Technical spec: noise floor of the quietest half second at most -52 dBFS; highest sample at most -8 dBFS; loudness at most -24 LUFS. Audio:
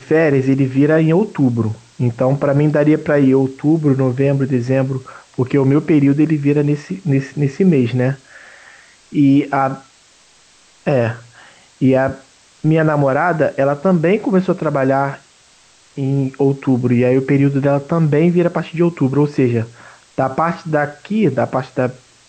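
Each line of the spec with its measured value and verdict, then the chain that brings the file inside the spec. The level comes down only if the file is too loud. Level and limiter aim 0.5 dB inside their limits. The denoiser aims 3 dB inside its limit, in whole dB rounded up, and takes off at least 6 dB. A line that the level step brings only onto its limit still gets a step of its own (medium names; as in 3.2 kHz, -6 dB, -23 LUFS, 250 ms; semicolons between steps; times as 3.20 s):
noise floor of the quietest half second -50 dBFS: fail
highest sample -4.0 dBFS: fail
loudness -16.0 LUFS: fail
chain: trim -8.5 dB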